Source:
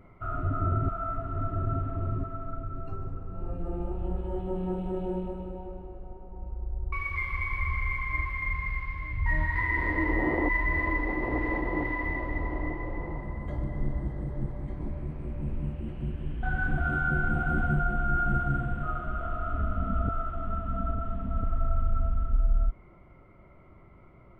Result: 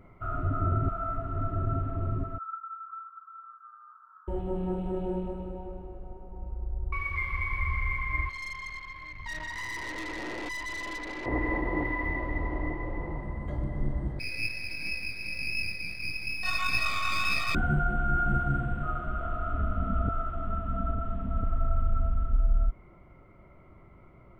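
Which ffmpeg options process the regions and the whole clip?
-filter_complex "[0:a]asettb=1/sr,asplit=3[a][b][c];[a]atrim=end=2.384[d];[b]atrim=start=2.38:end=4.28,asetpts=PTS-STARTPTS,afade=t=in:d=0.004:c=qsin,afade=t=out:st=1.896:d=0.004:c=qsin,asuperpass=centerf=1300:order=8:qfactor=3.1,acontrast=38[e];[c]atrim=start=4.276[f];[d][e]acrossfade=d=0.004:c1=hsin:c2=qsin[g];[g][f]acrossfade=d=0.004:c1=qsin:c2=hsin,asettb=1/sr,asplit=3[h][i][j];[h]atrim=end=8.294[k];[i]atrim=start=8.29:end=11.26,asetpts=PTS-STARTPTS,afade=t=in:d=0.004:c=qsin,afade=t=out:st=2.966:d=0.004:c=qsin,equalizer=f=60:t=o:w=2.9:g=-15,aeval=exprs='(tanh(50.1*val(0)+0.6)-tanh(0.6))/50.1':c=same[l];[j]atrim=start=11.256[m];[k][l]acrossfade=d=0.004:c1=hsin:c2=qsin[n];[n][m]acrossfade=d=0.004:c1=qsin:c2=hsin,asettb=1/sr,asplit=3[o][p][q];[o]atrim=end=14.194[r];[p]atrim=start=14.19:end=17.55,asetpts=PTS-STARTPTS,afade=t=in:d=0.004:c=qsin,afade=t=out:st=3.356:d=0.004:c=qsin,lowpass=f=2.2k:t=q:w=0.5098,lowpass=f=2.2k:t=q:w=0.6013,lowpass=f=2.2k:t=q:w=0.9,lowpass=f=2.2k:t=q:w=2.563,afreqshift=-2600,aeval=exprs='max(val(0),0)':c=same,asplit=2[s][t];[t]adelay=19,volume=-5dB[u];[s][u]amix=inputs=2:normalize=0,atrim=end_sample=148176[v];[q]atrim=start=17.546[w];[r][v]acrossfade=d=0.004:c1=hsin:c2=qsin[x];[x][w]acrossfade=d=0.004:c1=qsin:c2=hsin"

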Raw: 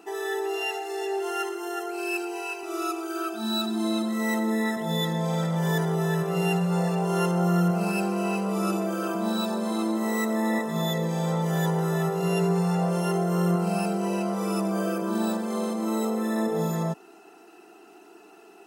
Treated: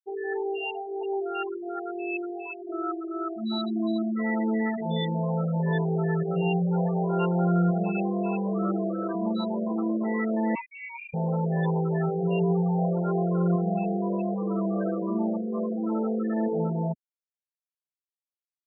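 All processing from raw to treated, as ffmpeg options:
-filter_complex "[0:a]asettb=1/sr,asplit=3[a][b][c];[a]atrim=end=10.554[d];[b]atrim=start=10.55:end=11.14,asetpts=PTS-STARTPTS,afade=t=in:d=0.004:c=qsin,afade=t=out:st=0.586:d=0.004:c=qsin,highpass=f=720:p=1,lowpass=f=2.5k:t=q:w=0.5098,lowpass=f=2.5k:t=q:w=0.6013,lowpass=f=2.5k:t=q:w=0.9,lowpass=f=2.5k:t=q:w=2.563,afreqshift=-2900[e];[c]atrim=start=11.136[f];[d][e]acrossfade=d=0.004:c1=hsin:c2=qsin[g];[g][f]acrossfade=d=0.004:c1=qsin:c2=hsin,lowpass=f=2.7k:p=1,afftfilt=real='re*gte(hypot(re,im),0.0794)':imag='im*gte(hypot(re,im),0.0794)':win_size=1024:overlap=0.75"

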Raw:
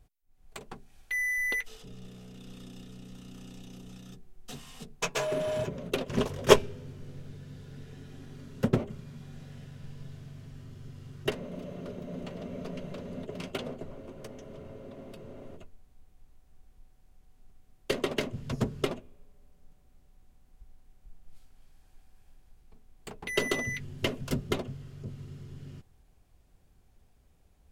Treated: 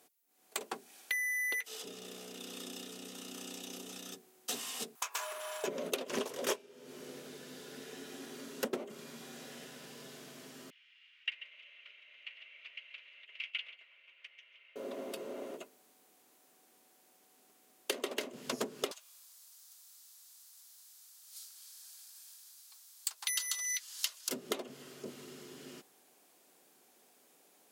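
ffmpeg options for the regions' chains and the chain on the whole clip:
-filter_complex "[0:a]asettb=1/sr,asplit=3[a][b][c];[a]atrim=end=4.954[d];[b]atrim=start=4.95:end=5.64,asetpts=PTS-STARTPTS,afade=t=in:d=0.004:c=qsin,afade=t=out:st=0.686:d=0.004:c=qsin,highshelf=f=11k:g=11.5,acompressor=threshold=-40dB:ratio=16:attack=3.2:release=140:knee=1:detection=peak,highpass=f=1.1k:t=q:w=2.3[e];[c]atrim=start=5.636[f];[d][e]acrossfade=d=0.004:c1=hsin:c2=qsin[g];[g][f]acrossfade=d=0.004:c1=qsin:c2=hsin,asettb=1/sr,asplit=3[h][i][j];[h]atrim=end=10.704[k];[i]atrim=start=10.7:end=14.76,asetpts=PTS-STARTPTS,afade=t=in:d=0.004:c=qsin,afade=t=out:st=4.056:d=0.004:c=qsin,asuperpass=centerf=2500:order=4:qfactor=2.5,aecho=1:1:137:0.15,atrim=end_sample=179046[l];[j]atrim=start=14.756[m];[k][l]acrossfade=d=0.004:c1=hsin:c2=qsin[n];[n][m]acrossfade=d=0.004:c1=qsin:c2=hsin,asettb=1/sr,asplit=3[o][p][q];[o]atrim=end=18.914[r];[p]atrim=start=18.91:end=24.29,asetpts=PTS-STARTPTS,afade=t=in:d=0.004:c=qsin,afade=t=out:st=5.376:d=0.004:c=qsin,highpass=f=1.1k:w=0.5412,highpass=f=1.1k:w=1.3066,highshelf=f=3.3k:t=q:w=1.5:g=9.5[s];[q]atrim=start=24.286[t];[r][s]acrossfade=d=0.004:c1=hsin:c2=qsin[u];[u][t]acrossfade=d=0.004:c1=qsin:c2=hsin,highpass=f=280:w=0.5412,highpass=f=280:w=1.3066,aemphasis=mode=production:type=cd,acompressor=threshold=-38dB:ratio=16,volume=6dB"

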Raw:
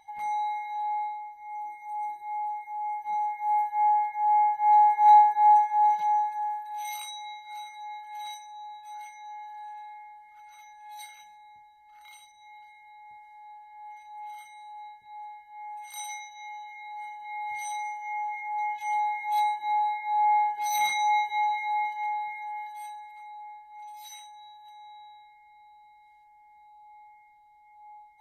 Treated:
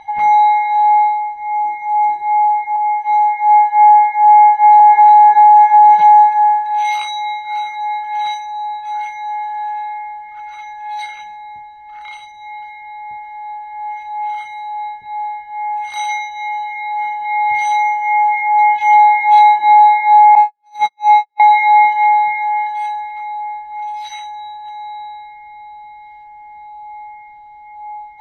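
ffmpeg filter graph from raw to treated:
-filter_complex "[0:a]asettb=1/sr,asplit=3[a][b][c];[a]atrim=end=2.764[d];[b]atrim=start=2.76:end=4.8,asetpts=PTS-STARTPTS,afade=t=in:d=0.004:c=qsin,afade=t=out:st=2.036:d=0.004:c=qsin,highpass=f=860:p=1,bandreject=f=1.5k:w=6.6[e];[c]atrim=start=4.796[f];[d][e]acrossfade=d=0.004:c1=hsin:c2=qsin[g];[g][f]acrossfade=d=0.004:c1=qsin:c2=hsin,asettb=1/sr,asplit=3[h][i][j];[h]atrim=end=20.354[k];[i]atrim=start=20.35:end=21.4,asetpts=PTS-STARTPTS,afade=t=in:d=0.004:c=qsin,afade=t=out:st=1.046:d=0.004:c=qsin,aeval=exprs='val(0)+0.5*0.00708*sgn(val(0))':c=same,equalizer=f=2.5k:t=o:w=0.5:g=-11,agate=range=-57dB:threshold=-24dB:ratio=16:release=100:detection=peak[l];[j]atrim=start=21.396[m];[k][l]acrossfade=d=0.004:c1=hsin:c2=qsin[n];[n][m]acrossfade=d=0.004:c1=qsin:c2=hsin,lowpass=3k,alimiter=level_in=20.5dB:limit=-1dB:release=50:level=0:latency=1,volume=-1dB"

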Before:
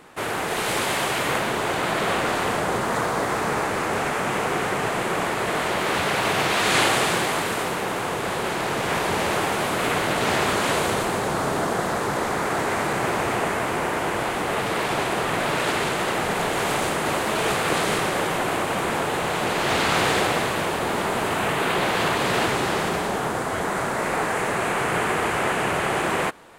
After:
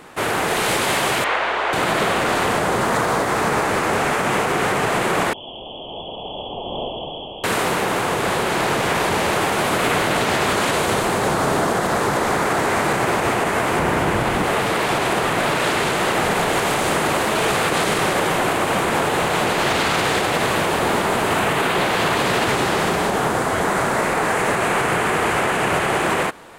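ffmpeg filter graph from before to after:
-filter_complex "[0:a]asettb=1/sr,asplit=3[a][b][c];[a]atrim=end=1.244[d];[b]atrim=start=1.24:end=1.73,asetpts=PTS-STARTPTS,afade=t=in:d=0.004:c=qsin,afade=t=out:st=0.486:d=0.004:c=qsin,highpass=590,lowpass=3.2k,aeval=exprs='val(0)+0.002*(sin(2*PI*60*n/s)+sin(2*PI*2*60*n/s)/2+sin(2*PI*3*60*n/s)/3+sin(2*PI*4*60*n/s)/4+sin(2*PI*5*60*n/s)/5)':c=same[e];[c]atrim=start=1.726[f];[d][e]acrossfade=d=0.004:c1=hsin:c2=qsin[g];[g][f]acrossfade=d=0.004:c1=qsin:c2=hsin,asettb=1/sr,asplit=3[h][i][j];[h]atrim=end=5.334[k];[i]atrim=start=5.33:end=7.44,asetpts=PTS-STARTPTS,afade=t=in:d=0.004:c=qsin,afade=t=out:st=2.106:d=0.004:c=qsin,lowpass=f=3k:t=q:w=0.5098,lowpass=f=3k:t=q:w=0.6013,lowpass=f=3k:t=q:w=0.9,lowpass=f=3k:t=q:w=2.563,afreqshift=-3500,asuperstop=centerf=1800:order=8:qfactor=0.54[l];[j]atrim=start=7.436[m];[k][l]acrossfade=d=0.004:c1=hsin:c2=qsin[n];[n][m]acrossfade=d=0.004:c1=qsin:c2=hsin,asettb=1/sr,asplit=3[o][p][q];[o]atrim=end=13.794[r];[p]atrim=start=13.79:end=14.44,asetpts=PTS-STARTPTS,afade=t=in:d=0.004:c=qsin,afade=t=out:st=0.646:d=0.004:c=qsin,bass=f=250:g=8,treble=f=4k:g=-2,aeval=exprs='sgn(val(0))*max(abs(val(0))-0.00188,0)':c=same[s];[q]atrim=start=14.436[t];[r][s]acrossfade=d=0.004:c1=hsin:c2=qsin[u];[u][t]acrossfade=d=0.004:c1=qsin:c2=hsin,alimiter=limit=-15.5dB:level=0:latency=1:release=62,acontrast=50"

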